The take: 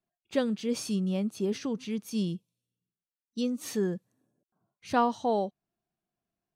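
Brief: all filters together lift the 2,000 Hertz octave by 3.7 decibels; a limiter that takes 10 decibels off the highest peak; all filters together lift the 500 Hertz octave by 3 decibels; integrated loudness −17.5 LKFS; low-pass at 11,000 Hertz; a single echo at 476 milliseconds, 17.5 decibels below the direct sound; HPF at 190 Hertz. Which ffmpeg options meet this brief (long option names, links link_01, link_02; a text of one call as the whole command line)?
ffmpeg -i in.wav -af "highpass=190,lowpass=11000,equalizer=frequency=500:width_type=o:gain=3.5,equalizer=frequency=2000:width_type=o:gain=5,alimiter=limit=-20.5dB:level=0:latency=1,aecho=1:1:476:0.133,volume=15dB" out.wav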